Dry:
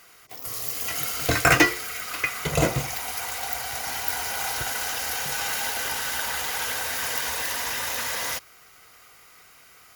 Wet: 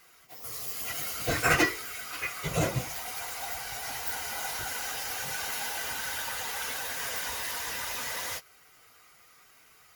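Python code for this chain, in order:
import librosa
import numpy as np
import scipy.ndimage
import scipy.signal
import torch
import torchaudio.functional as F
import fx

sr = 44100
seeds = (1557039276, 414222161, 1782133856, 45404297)

y = fx.phase_scramble(x, sr, seeds[0], window_ms=50)
y = y * 10.0 ** (-6.0 / 20.0)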